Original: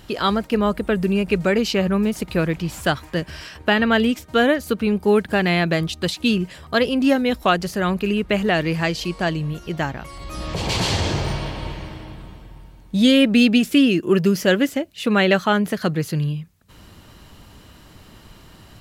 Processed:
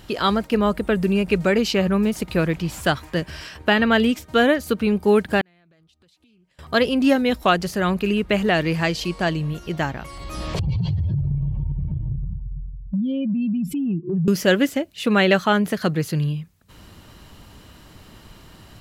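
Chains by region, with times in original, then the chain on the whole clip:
5.41–6.59 flipped gate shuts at -26 dBFS, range -27 dB + compressor 16:1, threshold -54 dBFS + Doppler distortion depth 0.18 ms
10.59–14.28 spectral contrast raised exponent 2.5 + resonant low shelf 210 Hz +10.5 dB, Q 3 + compressor 5:1, threshold -21 dBFS
whole clip: dry

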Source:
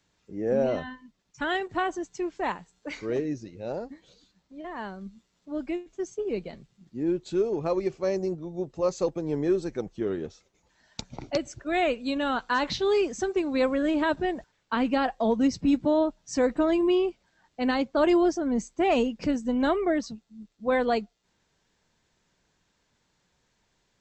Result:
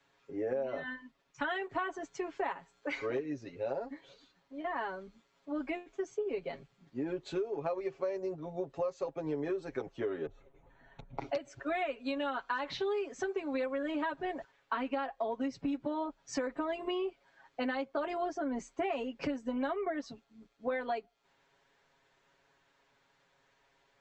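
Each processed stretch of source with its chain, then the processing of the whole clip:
10.26–11.18 tilt -4.5 dB/oct + compressor 4:1, threshold -44 dBFS + Butterworth band-stop 5000 Hz, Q 3.3
whole clip: three-band isolator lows -12 dB, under 380 Hz, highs -13 dB, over 3200 Hz; comb 7.3 ms, depth 84%; compressor 10:1, threshold -34 dBFS; gain +2.5 dB

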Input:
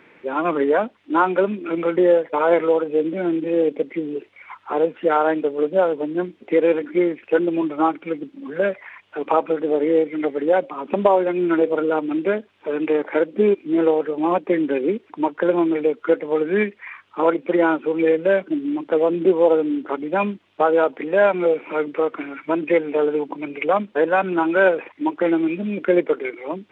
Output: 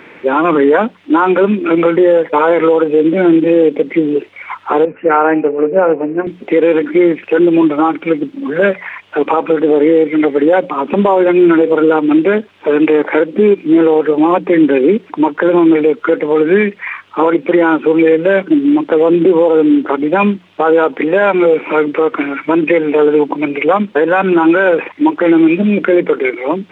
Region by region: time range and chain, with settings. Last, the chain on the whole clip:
4.85–6.27 elliptic low-pass 2600 Hz + de-hum 88.76 Hz, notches 9 + three-band expander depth 70%
whole clip: notches 60/120/180 Hz; dynamic EQ 640 Hz, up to -6 dB, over -32 dBFS, Q 3.9; maximiser +14.5 dB; gain -1 dB

